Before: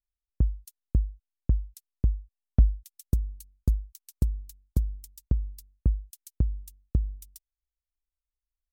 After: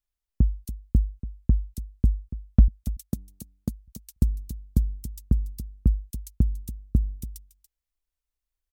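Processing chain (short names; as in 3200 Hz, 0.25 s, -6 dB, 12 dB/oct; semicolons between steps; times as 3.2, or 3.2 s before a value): 2.68–3.88 HPF 150 Hz 12 dB/oct; dynamic EQ 220 Hz, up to +7 dB, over -48 dBFS, Q 2.8; echo 0.285 s -14.5 dB; gain +3 dB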